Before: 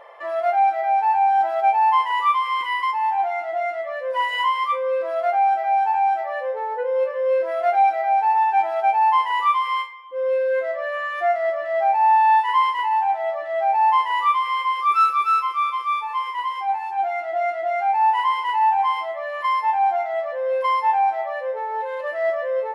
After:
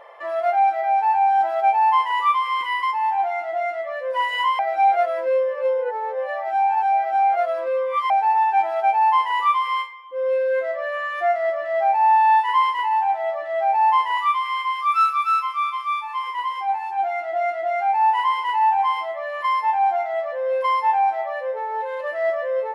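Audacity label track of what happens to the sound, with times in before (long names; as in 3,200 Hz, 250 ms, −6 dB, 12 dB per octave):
4.590000	8.100000	reverse
14.170000	16.240000	high-pass filter 920 Hz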